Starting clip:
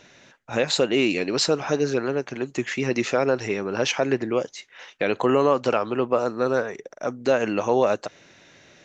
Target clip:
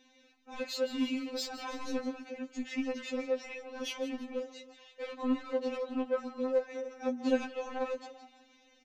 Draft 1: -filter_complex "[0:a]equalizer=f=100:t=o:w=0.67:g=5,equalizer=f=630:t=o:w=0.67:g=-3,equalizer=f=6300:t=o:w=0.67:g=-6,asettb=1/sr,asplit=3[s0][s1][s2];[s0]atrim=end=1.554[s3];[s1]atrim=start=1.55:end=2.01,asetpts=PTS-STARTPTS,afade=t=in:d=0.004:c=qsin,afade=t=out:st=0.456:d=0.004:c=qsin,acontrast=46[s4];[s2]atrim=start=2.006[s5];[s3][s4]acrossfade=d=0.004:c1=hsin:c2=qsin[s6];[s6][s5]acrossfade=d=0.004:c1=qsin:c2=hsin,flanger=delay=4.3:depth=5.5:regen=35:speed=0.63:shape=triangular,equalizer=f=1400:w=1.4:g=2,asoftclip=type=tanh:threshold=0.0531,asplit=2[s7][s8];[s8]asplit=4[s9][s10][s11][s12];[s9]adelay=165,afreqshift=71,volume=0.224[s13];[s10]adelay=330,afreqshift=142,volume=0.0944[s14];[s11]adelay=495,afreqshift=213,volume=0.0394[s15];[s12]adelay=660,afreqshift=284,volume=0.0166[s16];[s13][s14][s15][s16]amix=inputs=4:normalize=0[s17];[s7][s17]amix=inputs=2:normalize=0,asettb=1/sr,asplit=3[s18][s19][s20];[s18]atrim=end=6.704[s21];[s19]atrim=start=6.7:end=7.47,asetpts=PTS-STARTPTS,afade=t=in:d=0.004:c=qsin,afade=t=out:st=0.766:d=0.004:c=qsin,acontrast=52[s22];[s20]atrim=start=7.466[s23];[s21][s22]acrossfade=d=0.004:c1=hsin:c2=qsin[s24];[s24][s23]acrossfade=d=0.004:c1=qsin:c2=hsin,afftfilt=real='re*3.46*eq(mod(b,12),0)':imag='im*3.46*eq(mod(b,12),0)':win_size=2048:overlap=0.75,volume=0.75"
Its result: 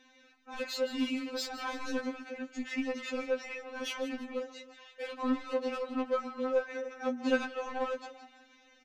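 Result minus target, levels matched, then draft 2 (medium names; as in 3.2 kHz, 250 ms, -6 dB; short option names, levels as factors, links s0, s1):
1 kHz band +3.0 dB
-filter_complex "[0:a]equalizer=f=100:t=o:w=0.67:g=5,equalizer=f=630:t=o:w=0.67:g=-3,equalizer=f=6300:t=o:w=0.67:g=-6,asettb=1/sr,asplit=3[s0][s1][s2];[s0]atrim=end=1.554[s3];[s1]atrim=start=1.55:end=2.01,asetpts=PTS-STARTPTS,afade=t=in:d=0.004:c=qsin,afade=t=out:st=0.456:d=0.004:c=qsin,acontrast=46[s4];[s2]atrim=start=2.006[s5];[s3][s4]acrossfade=d=0.004:c1=hsin:c2=qsin[s6];[s6][s5]acrossfade=d=0.004:c1=qsin:c2=hsin,flanger=delay=4.3:depth=5.5:regen=35:speed=0.63:shape=triangular,equalizer=f=1400:w=1.4:g=-7.5,asoftclip=type=tanh:threshold=0.0531,asplit=2[s7][s8];[s8]asplit=4[s9][s10][s11][s12];[s9]adelay=165,afreqshift=71,volume=0.224[s13];[s10]adelay=330,afreqshift=142,volume=0.0944[s14];[s11]adelay=495,afreqshift=213,volume=0.0394[s15];[s12]adelay=660,afreqshift=284,volume=0.0166[s16];[s13][s14][s15][s16]amix=inputs=4:normalize=0[s17];[s7][s17]amix=inputs=2:normalize=0,asettb=1/sr,asplit=3[s18][s19][s20];[s18]atrim=end=6.704[s21];[s19]atrim=start=6.7:end=7.47,asetpts=PTS-STARTPTS,afade=t=in:d=0.004:c=qsin,afade=t=out:st=0.766:d=0.004:c=qsin,acontrast=52[s22];[s20]atrim=start=7.466[s23];[s21][s22]acrossfade=d=0.004:c1=hsin:c2=qsin[s24];[s24][s23]acrossfade=d=0.004:c1=qsin:c2=hsin,afftfilt=real='re*3.46*eq(mod(b,12),0)':imag='im*3.46*eq(mod(b,12),0)':win_size=2048:overlap=0.75,volume=0.75"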